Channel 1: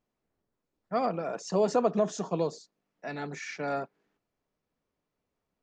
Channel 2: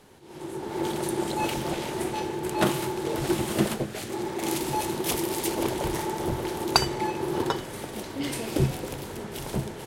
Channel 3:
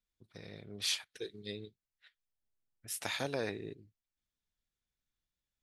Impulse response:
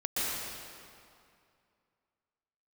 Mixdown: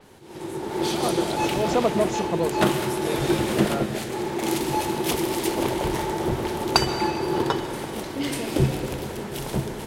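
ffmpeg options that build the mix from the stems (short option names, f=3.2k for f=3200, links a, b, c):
-filter_complex "[0:a]volume=-3.5dB[a];[1:a]adynamicequalizer=threshold=0.00501:dfrequency=5500:dqfactor=0.7:tfrequency=5500:tqfactor=0.7:attack=5:release=100:ratio=0.375:range=2.5:mode=cutabove:tftype=highshelf,volume=-5dB,asplit=2[b][c];[c]volume=-15.5dB[d];[2:a]volume=-11dB,asplit=3[e][f][g];[f]volume=-3dB[h];[g]apad=whole_len=247931[i];[a][i]sidechaincompress=threshold=-58dB:ratio=8:attack=16:release=107[j];[3:a]atrim=start_sample=2205[k];[d][h]amix=inputs=2:normalize=0[l];[l][k]afir=irnorm=-1:irlink=0[m];[j][b][e][m]amix=inputs=4:normalize=0,acontrast=85"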